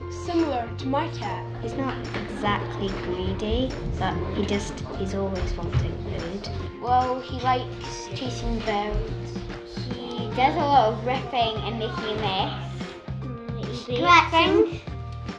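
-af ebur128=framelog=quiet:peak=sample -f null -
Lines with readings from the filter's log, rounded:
Integrated loudness:
  I:         -25.7 LUFS
  Threshold: -35.7 LUFS
Loudness range:
  LRA:         5.4 LU
  Threshold: -46.3 LUFS
  LRA low:   -28.3 LUFS
  LRA high:  -22.9 LUFS
Sample peak:
  Peak:       -2.9 dBFS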